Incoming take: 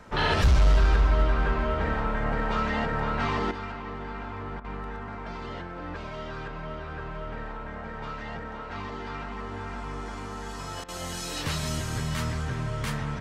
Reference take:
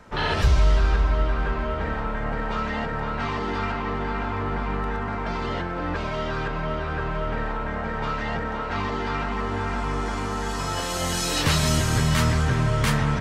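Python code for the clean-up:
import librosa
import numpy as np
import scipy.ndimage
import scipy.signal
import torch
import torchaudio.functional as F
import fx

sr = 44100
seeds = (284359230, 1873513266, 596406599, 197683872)

y = fx.fix_declip(x, sr, threshold_db=-14.5)
y = fx.fix_interpolate(y, sr, at_s=(4.6, 10.84), length_ms=43.0)
y = fx.fix_level(y, sr, at_s=3.51, step_db=9.0)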